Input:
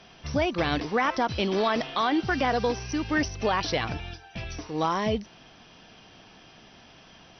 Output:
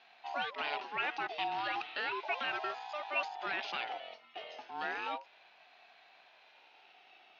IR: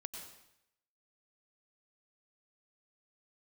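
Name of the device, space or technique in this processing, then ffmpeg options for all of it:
voice changer toy: -af "aeval=exprs='val(0)*sin(2*PI*720*n/s+720*0.25/0.34*sin(2*PI*0.34*n/s))':c=same,highpass=500,equalizer=f=510:t=q:w=4:g=-7,equalizer=f=750:t=q:w=4:g=9,equalizer=f=1.1k:t=q:w=4:g=-6,equalizer=f=2.7k:t=q:w=4:g=8,lowpass=f=4.3k:w=0.5412,lowpass=f=4.3k:w=1.3066,volume=-7.5dB"

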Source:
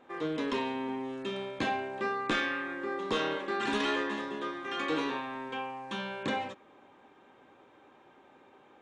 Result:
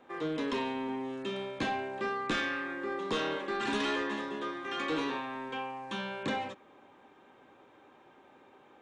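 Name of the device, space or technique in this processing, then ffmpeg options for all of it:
one-band saturation: -filter_complex "[0:a]acrossover=split=260|3800[a][b][c];[b]asoftclip=type=tanh:threshold=-26dB[d];[a][d][c]amix=inputs=3:normalize=0"

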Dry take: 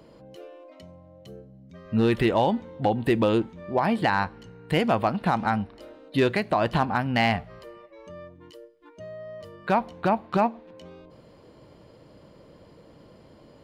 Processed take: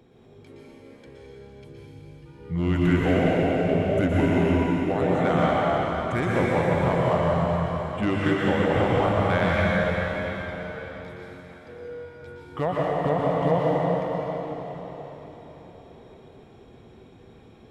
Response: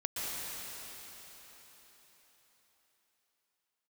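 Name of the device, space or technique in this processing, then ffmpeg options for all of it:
slowed and reverbed: -filter_complex "[0:a]asetrate=33957,aresample=44100[a];[1:a]atrim=start_sample=2205[b];[a][b]afir=irnorm=-1:irlink=0,volume=-2.5dB"

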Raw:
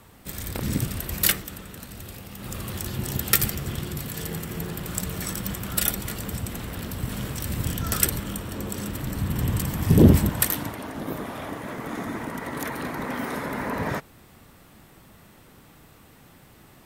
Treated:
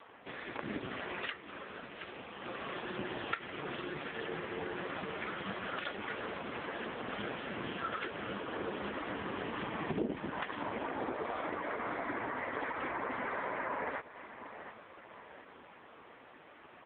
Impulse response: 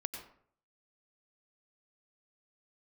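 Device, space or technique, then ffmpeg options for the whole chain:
voicemail: -filter_complex "[0:a]asettb=1/sr,asplit=3[a][b][c];[a]atrim=end=8.994[d];[b]atrim=start=8.99:end=9.58,asetpts=PTS-STARTPTS,afade=t=in:d=0.004:c=qsin,afade=t=out:st=0.586:d=0.004:c=qsin,highpass=170[e];[c]atrim=start=9.576[f];[d][e]acrossfade=d=0.004:c1=hsin:c2=qsin[g];[g][f]acrossfade=d=0.004:c1=qsin:c2=hsin,highpass=420,lowpass=2.7k,aecho=1:1:721|1442|2163:0.1|0.046|0.0212,acompressor=threshold=-36dB:ratio=8,volume=6dB" -ar 8000 -c:a libopencore_amrnb -b:a 5150

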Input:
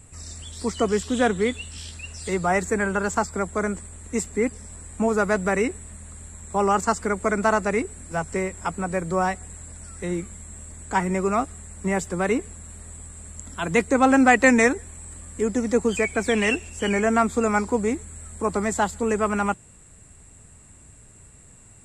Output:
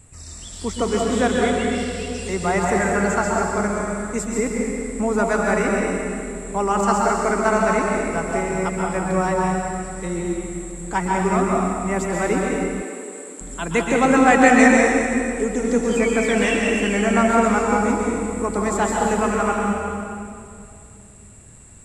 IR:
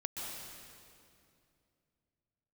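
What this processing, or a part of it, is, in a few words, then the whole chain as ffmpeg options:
stairwell: -filter_complex "[1:a]atrim=start_sample=2205[a];[0:a][a]afir=irnorm=-1:irlink=0,asettb=1/sr,asplit=3[b][c][d];[b]atrim=end=12.824[e];[c]atrim=start=12.82:end=13.41,asetpts=PTS-STARTPTS,afade=t=in:d=0.004:c=qsin,afade=t=out:st=0.586:d=0.004:c=qsin,highpass=f=280:w=0.5412,highpass=f=280:w=1.3066[f];[d]atrim=start=13.406[g];[e][f]acrossfade=d=0.004:c1=hsin:c2=qsin[h];[h][g]acrossfade=d=0.004:c1=qsin:c2=hsin,volume=2.5dB"

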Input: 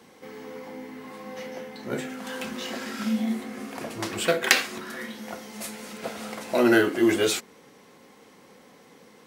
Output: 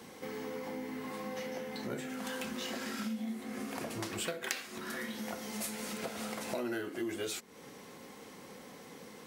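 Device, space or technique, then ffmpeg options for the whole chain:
ASMR close-microphone chain: -af "lowshelf=f=180:g=3.5,acompressor=threshold=-38dB:ratio=5,highshelf=f=6k:g=4.5,volume=1dB"

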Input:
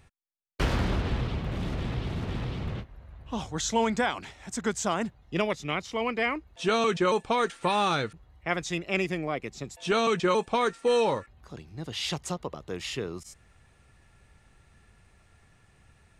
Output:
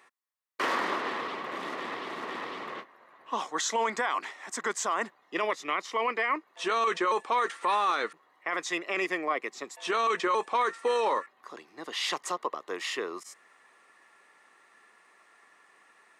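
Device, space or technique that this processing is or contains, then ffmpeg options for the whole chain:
laptop speaker: -af "highpass=f=310:w=0.5412,highpass=f=310:w=1.3066,equalizer=f=1.1k:t=o:w=0.46:g=12,equalizer=f=1.9k:t=o:w=0.3:g=9,alimiter=limit=-19dB:level=0:latency=1:release=12"

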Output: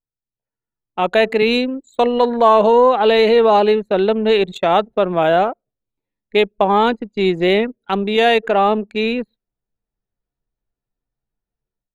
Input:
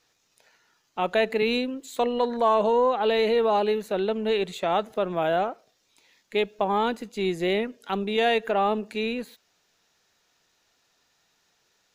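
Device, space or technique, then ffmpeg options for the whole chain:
voice memo with heavy noise removal: -af "anlmdn=3.98,dynaudnorm=f=470:g=3:m=12dB"

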